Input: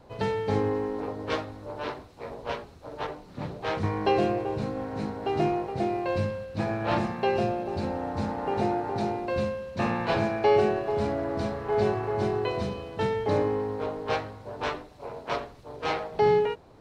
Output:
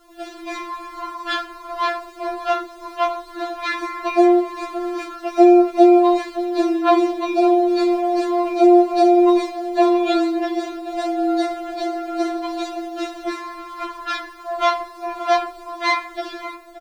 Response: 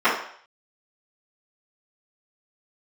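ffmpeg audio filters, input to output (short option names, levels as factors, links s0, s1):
-filter_complex "[0:a]bandreject=f=60.47:t=h:w=4,bandreject=f=120.94:t=h:w=4,bandreject=f=181.41:t=h:w=4,bandreject=f=241.88:t=h:w=4,bandreject=f=302.35:t=h:w=4,bandreject=f=362.82:t=h:w=4,bandreject=f=423.29:t=h:w=4,bandreject=f=483.76:t=h:w=4,bandreject=f=544.23:t=h:w=4,bandreject=f=604.7:t=h:w=4,bandreject=f=665.17:t=h:w=4,bandreject=f=725.64:t=h:w=4,bandreject=f=786.11:t=h:w=4,bandreject=f=846.58:t=h:w=4,bandreject=f=907.05:t=h:w=4,bandreject=f=967.52:t=h:w=4,bandreject=f=1027.99:t=h:w=4,bandreject=f=1088.46:t=h:w=4,bandreject=f=1148.93:t=h:w=4,bandreject=f=1209.4:t=h:w=4,bandreject=f=1269.87:t=h:w=4,acrossover=split=250[s0][s1];[s0]acompressor=threshold=0.02:ratio=5[s2];[s2][s1]amix=inputs=2:normalize=0,asplit=2[s3][s4];[s4]alimiter=limit=0.0708:level=0:latency=1:release=490,volume=0.708[s5];[s3][s5]amix=inputs=2:normalize=0,dynaudnorm=f=120:g=5:m=3.98,acrusher=bits=8:mix=0:aa=0.000001,asplit=2[s6][s7];[s7]adelay=571.4,volume=0.224,highshelf=f=4000:g=-12.9[s8];[s6][s8]amix=inputs=2:normalize=0,asplit=2[s9][s10];[1:a]atrim=start_sample=2205[s11];[s10][s11]afir=irnorm=-1:irlink=0,volume=0.0237[s12];[s9][s12]amix=inputs=2:normalize=0,afftfilt=real='re*4*eq(mod(b,16),0)':imag='im*4*eq(mod(b,16),0)':win_size=2048:overlap=0.75,volume=0.891"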